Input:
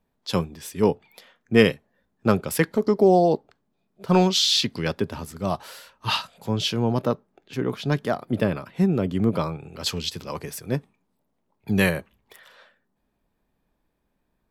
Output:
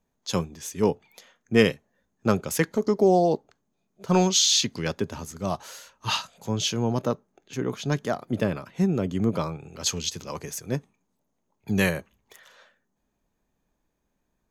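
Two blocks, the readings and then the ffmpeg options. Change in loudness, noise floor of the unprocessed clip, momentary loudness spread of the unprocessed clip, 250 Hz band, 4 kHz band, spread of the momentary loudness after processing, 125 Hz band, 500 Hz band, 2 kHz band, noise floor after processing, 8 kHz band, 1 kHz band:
-2.0 dB, -74 dBFS, 14 LU, -2.5 dB, -2.0 dB, 15 LU, -2.5 dB, -2.5 dB, -2.5 dB, -77 dBFS, +6.0 dB, -2.5 dB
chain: -af "equalizer=f=6500:w=5.4:g=15,volume=0.75"

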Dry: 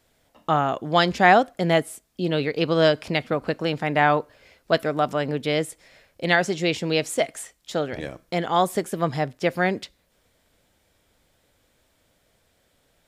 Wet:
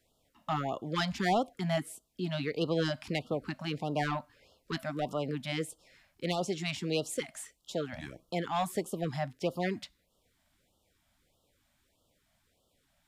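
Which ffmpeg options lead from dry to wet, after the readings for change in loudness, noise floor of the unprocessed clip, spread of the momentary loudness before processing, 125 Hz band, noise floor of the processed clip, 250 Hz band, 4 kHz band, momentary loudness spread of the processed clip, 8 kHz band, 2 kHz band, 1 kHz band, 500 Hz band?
-11.5 dB, -67 dBFS, 11 LU, -7.5 dB, -75 dBFS, -8.5 dB, -9.5 dB, 10 LU, -7.0 dB, -14.5 dB, -13.0 dB, -12.0 dB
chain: -filter_complex "[0:a]acrossover=split=370|4200[s0][s1][s2];[s1]asoftclip=type=tanh:threshold=0.133[s3];[s0][s3][s2]amix=inputs=3:normalize=0,afftfilt=real='re*(1-between(b*sr/1024,370*pow(2000/370,0.5+0.5*sin(2*PI*1.6*pts/sr))/1.41,370*pow(2000/370,0.5+0.5*sin(2*PI*1.6*pts/sr))*1.41))':imag='im*(1-between(b*sr/1024,370*pow(2000/370,0.5+0.5*sin(2*PI*1.6*pts/sr))/1.41,370*pow(2000/370,0.5+0.5*sin(2*PI*1.6*pts/sr))*1.41))':win_size=1024:overlap=0.75,volume=0.422"

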